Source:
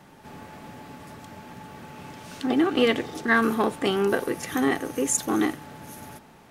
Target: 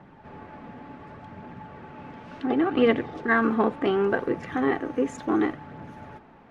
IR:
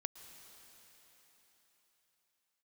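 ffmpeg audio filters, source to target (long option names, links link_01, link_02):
-af "lowpass=2000,aphaser=in_gain=1:out_gain=1:delay=4.5:decay=0.29:speed=0.69:type=triangular"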